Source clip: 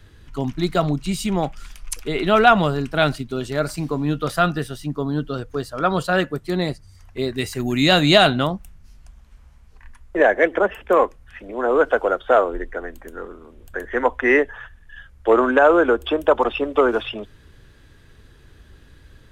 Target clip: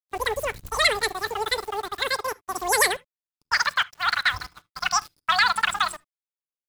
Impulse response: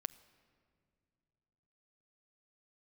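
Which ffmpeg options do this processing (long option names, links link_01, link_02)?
-filter_complex "[0:a]asetrate=127449,aresample=44100,aeval=exprs='val(0)*gte(abs(val(0)),0.0237)':channel_layout=same,agate=range=-15dB:threshold=-31dB:ratio=16:detection=peak[link_01];[1:a]atrim=start_sample=2205,atrim=end_sample=3528[link_02];[link_01][link_02]afir=irnorm=-1:irlink=0,volume=-3dB"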